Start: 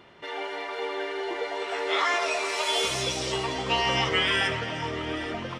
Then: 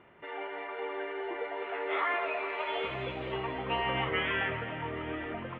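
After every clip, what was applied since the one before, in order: inverse Chebyshev low-pass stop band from 5100 Hz, stop band 40 dB; gain -5 dB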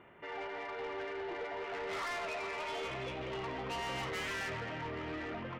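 soft clip -36 dBFS, distortion -8 dB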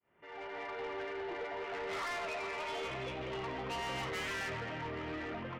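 opening faded in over 0.62 s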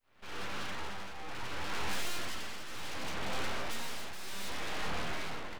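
full-wave rectifier; tremolo triangle 0.66 Hz, depth 70%; gain +9.5 dB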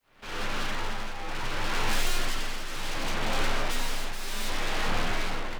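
frequency shift +17 Hz; gain +7.5 dB

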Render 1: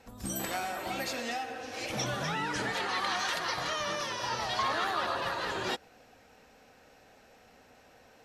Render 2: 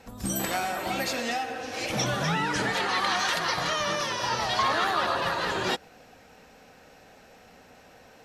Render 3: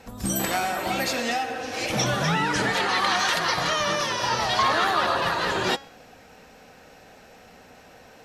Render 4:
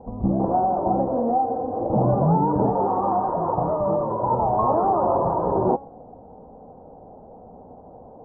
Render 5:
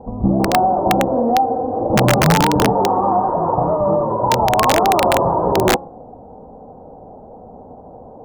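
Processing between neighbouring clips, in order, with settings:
bell 170 Hz +5.5 dB 0.29 oct; gain +5.5 dB
de-hum 274.8 Hz, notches 28; gain +3.5 dB
steep low-pass 950 Hz 48 dB/oct; gain +7 dB
de-hum 174.2 Hz, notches 36; wrapped overs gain 11.5 dB; gain +6 dB

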